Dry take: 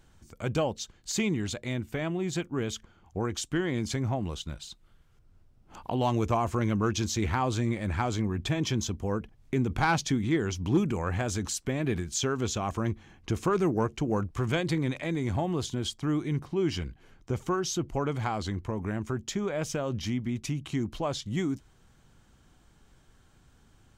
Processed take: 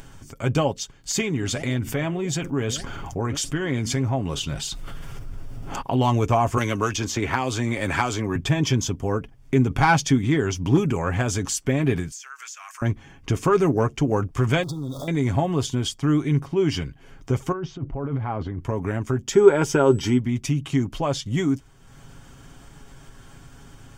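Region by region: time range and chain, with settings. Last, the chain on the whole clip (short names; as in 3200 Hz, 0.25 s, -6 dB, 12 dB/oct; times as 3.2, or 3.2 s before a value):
1.21–5.82 flange 1.7 Hz, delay 0.2 ms, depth 9.4 ms, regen +84% + fast leveller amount 70%
6.57–8.36 bell 130 Hz -8 dB 1.9 oct + three-band squash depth 100%
12.11–12.82 HPF 1500 Hz 24 dB/oct + bell 3400 Hz -12 dB 0.64 oct + compressor 8:1, threshold -42 dBFS
14.63–15.08 zero-crossing step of -37 dBFS + brick-wall FIR band-stop 1400–3300 Hz + compressor, threshold -35 dBFS
17.52–18.61 tape spacing loss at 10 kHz 44 dB + negative-ratio compressor -35 dBFS
19.32–20.17 whine 7900 Hz -48 dBFS + small resonant body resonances 380/890/1400 Hz, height 14 dB, ringing for 30 ms
whole clip: notch 4000 Hz, Q 7.7; upward compressor, threshold -42 dBFS; comb 7.3 ms, depth 47%; gain +6 dB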